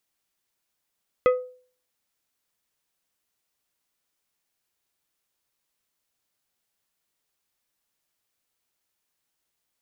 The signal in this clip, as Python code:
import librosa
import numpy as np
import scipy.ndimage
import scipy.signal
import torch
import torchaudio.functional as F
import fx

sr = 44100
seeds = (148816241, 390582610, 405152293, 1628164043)

y = fx.strike_glass(sr, length_s=0.89, level_db=-12.5, body='plate', hz=503.0, decay_s=0.45, tilt_db=7.5, modes=5)